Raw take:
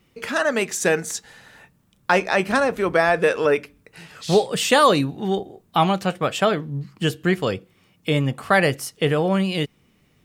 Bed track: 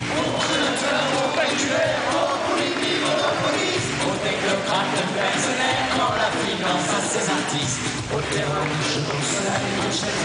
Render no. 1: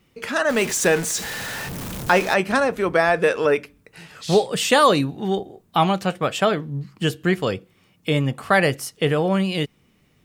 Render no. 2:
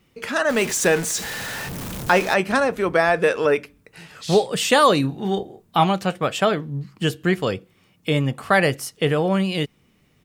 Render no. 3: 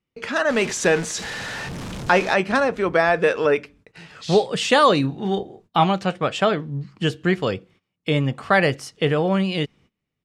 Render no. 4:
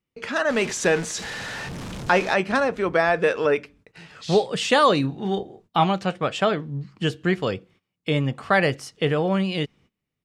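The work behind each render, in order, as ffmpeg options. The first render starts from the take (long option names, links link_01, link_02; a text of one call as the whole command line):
ffmpeg -i in.wav -filter_complex "[0:a]asettb=1/sr,asplit=3[link_01][link_02][link_03];[link_01]atrim=end=0.494[link_04];[link_02]atrim=start=0.49:end=2.34,asetpts=PTS-STARTPTS,afade=type=in:duration=0.004:curve=qsin,afade=type=out:start_time=1.846:duration=0.004:curve=qsin,aeval=exprs='val(0)+0.5*0.0562*sgn(val(0))':channel_layout=same[link_05];[link_03]atrim=start=2.336[link_06];[link_04][link_05]acrossfade=duration=0.004:curve1=hsin:curve2=qsin[link_07];[link_07][link_06]acrossfade=duration=0.004:curve1=qsin:curve2=hsin" out.wav
ffmpeg -i in.wav -filter_complex "[0:a]asplit=3[link_01][link_02][link_03];[link_01]afade=type=out:start_time=5.03:duration=0.02[link_04];[link_02]asplit=2[link_05][link_06];[link_06]adelay=30,volume=-9dB[link_07];[link_05][link_07]amix=inputs=2:normalize=0,afade=type=in:start_time=5.03:duration=0.02,afade=type=out:start_time=5.83:duration=0.02[link_08];[link_03]afade=type=in:start_time=5.83:duration=0.02[link_09];[link_04][link_08][link_09]amix=inputs=3:normalize=0" out.wav
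ffmpeg -i in.wav -af "agate=range=-21dB:threshold=-50dB:ratio=16:detection=peak,lowpass=6200" out.wav
ffmpeg -i in.wav -af "volume=-2dB" out.wav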